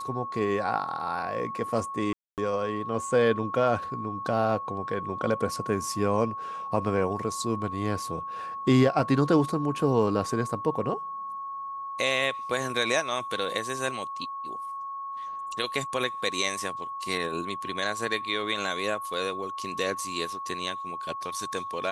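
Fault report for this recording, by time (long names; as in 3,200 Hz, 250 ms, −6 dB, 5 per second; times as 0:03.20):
whistle 1,100 Hz −33 dBFS
0:02.13–0:02.38: drop-out 248 ms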